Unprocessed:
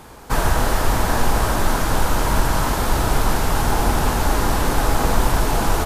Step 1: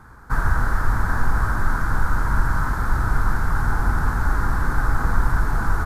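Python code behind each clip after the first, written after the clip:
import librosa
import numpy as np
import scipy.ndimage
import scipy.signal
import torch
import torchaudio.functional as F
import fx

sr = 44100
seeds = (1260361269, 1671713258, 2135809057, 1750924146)

y = fx.curve_eq(x, sr, hz=(110.0, 610.0, 1500.0, 2800.0, 4200.0), db=(0, -15, 3, -23, -16))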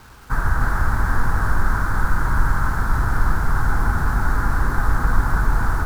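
y = fx.quant_dither(x, sr, seeds[0], bits=8, dither='none')
y = y + 10.0 ** (-4.5 / 20.0) * np.pad(y, (int(299 * sr / 1000.0), 0))[:len(y)]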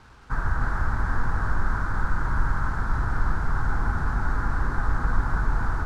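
y = fx.air_absorb(x, sr, metres=76.0)
y = F.gain(torch.from_numpy(y), -5.5).numpy()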